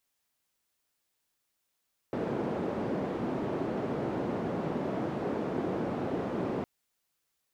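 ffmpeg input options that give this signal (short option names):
-f lavfi -i "anoisesrc=c=white:d=4.51:r=44100:seed=1,highpass=f=170,lowpass=f=410,volume=-8.7dB"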